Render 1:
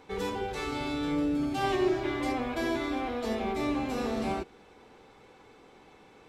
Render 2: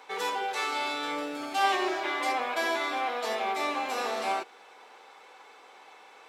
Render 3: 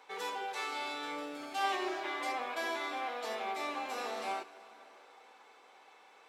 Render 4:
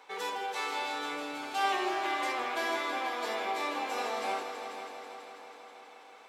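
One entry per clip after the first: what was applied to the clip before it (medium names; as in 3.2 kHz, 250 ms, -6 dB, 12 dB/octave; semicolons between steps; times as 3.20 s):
Chebyshev high-pass 810 Hz, order 2; trim +7 dB
plate-style reverb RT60 4.4 s, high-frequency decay 0.85×, DRR 15.5 dB; trim -7.5 dB
multi-head delay 163 ms, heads all three, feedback 62%, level -13 dB; trim +3 dB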